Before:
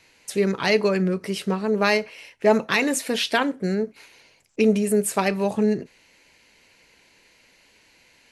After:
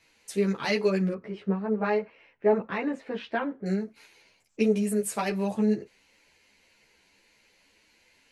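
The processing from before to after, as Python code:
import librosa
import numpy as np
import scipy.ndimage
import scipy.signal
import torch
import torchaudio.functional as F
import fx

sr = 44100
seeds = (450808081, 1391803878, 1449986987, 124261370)

y = fx.lowpass(x, sr, hz=1600.0, slope=12, at=(1.13, 3.66))
y = fx.ensemble(y, sr)
y = y * librosa.db_to_amplitude(-3.5)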